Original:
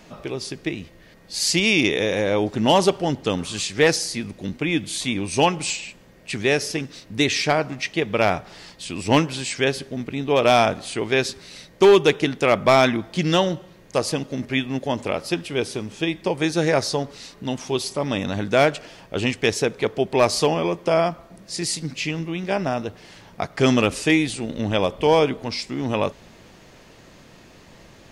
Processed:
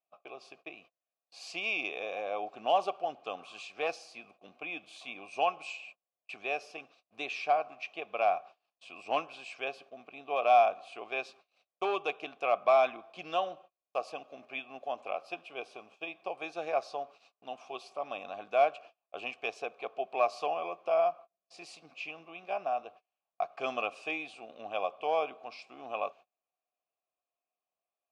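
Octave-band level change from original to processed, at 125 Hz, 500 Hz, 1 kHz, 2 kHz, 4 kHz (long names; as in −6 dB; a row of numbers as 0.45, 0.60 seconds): below −35 dB, −12.5 dB, −6.5 dB, −13.0 dB, −19.0 dB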